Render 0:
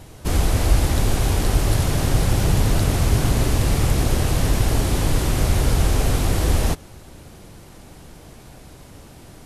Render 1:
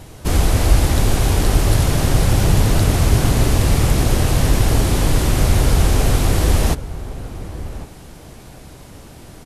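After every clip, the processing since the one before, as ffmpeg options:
ffmpeg -i in.wav -filter_complex "[0:a]asplit=2[link_01][link_02];[link_02]adelay=1108,volume=-14dB,highshelf=frequency=4000:gain=-24.9[link_03];[link_01][link_03]amix=inputs=2:normalize=0,volume=3.5dB" out.wav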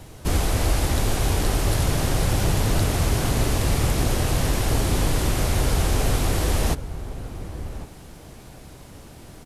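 ffmpeg -i in.wav -filter_complex "[0:a]acrossover=split=340[link_01][link_02];[link_01]alimiter=limit=-10dB:level=0:latency=1:release=146[link_03];[link_03][link_02]amix=inputs=2:normalize=0,acrusher=bits=10:mix=0:aa=0.000001,volume=-4dB" out.wav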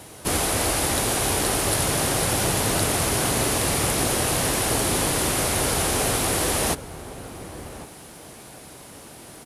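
ffmpeg -i in.wav -af "highpass=frequency=320:poles=1,equalizer=frequency=9900:width=2.9:gain=8,volume=4dB" out.wav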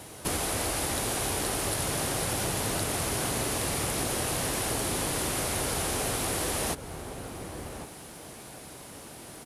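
ffmpeg -i in.wav -af "acompressor=threshold=-26dB:ratio=3,volume=-2dB" out.wav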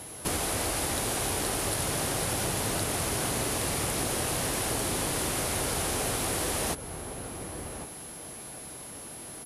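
ffmpeg -i in.wav -af "aeval=exprs='val(0)+0.00708*sin(2*PI*11000*n/s)':channel_layout=same" out.wav

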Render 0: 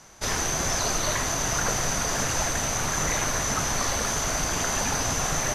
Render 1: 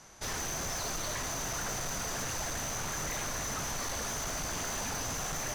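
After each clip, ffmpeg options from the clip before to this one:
ffmpeg -i in.wav -af "asoftclip=type=tanh:threshold=-28.5dB,volume=-4dB" out.wav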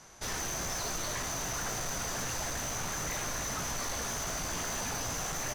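ffmpeg -i in.wav -filter_complex "[0:a]asplit=2[link_01][link_02];[link_02]adelay=17,volume=-11dB[link_03];[link_01][link_03]amix=inputs=2:normalize=0" out.wav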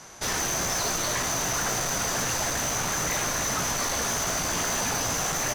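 ffmpeg -i in.wav -af "lowshelf=frequency=66:gain=-9.5,volume=8.5dB" out.wav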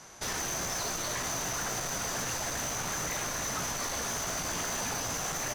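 ffmpeg -i in.wav -af "alimiter=limit=-23dB:level=0:latency=1,volume=-4.5dB" out.wav

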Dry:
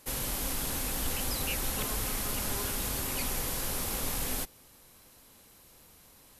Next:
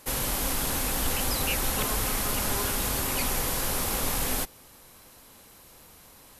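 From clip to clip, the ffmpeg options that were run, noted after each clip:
ffmpeg -i in.wav -af "equalizer=frequency=990:width_type=o:width=2.1:gain=3,volume=4.5dB" out.wav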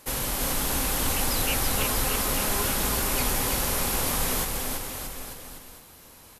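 ffmpeg -i in.wav -af "aecho=1:1:330|627|894.3|1135|1351:0.631|0.398|0.251|0.158|0.1" out.wav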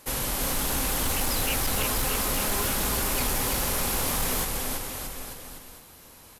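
ffmpeg -i in.wav -af "asoftclip=type=hard:threshold=-21dB" out.wav

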